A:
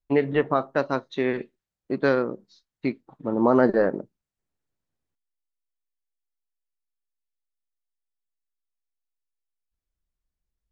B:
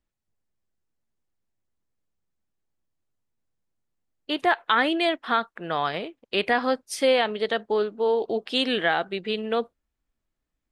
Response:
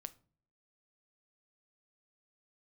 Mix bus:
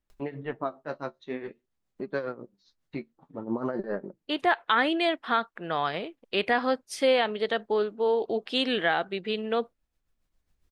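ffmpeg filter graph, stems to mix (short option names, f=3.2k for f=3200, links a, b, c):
-filter_complex "[0:a]acompressor=mode=upward:threshold=-26dB:ratio=2.5,flanger=delay=4.9:depth=8.6:regen=39:speed=0.52:shape=sinusoidal,tremolo=f=7.3:d=0.69,adelay=100,volume=-4dB[a];[1:a]volume=-2dB,asplit=2[b][c];[c]apad=whole_len=476812[d];[a][d]sidechaincompress=threshold=-42dB:ratio=10:attack=34:release=1260[e];[e][b]amix=inputs=2:normalize=0,highshelf=f=7.9k:g=-7"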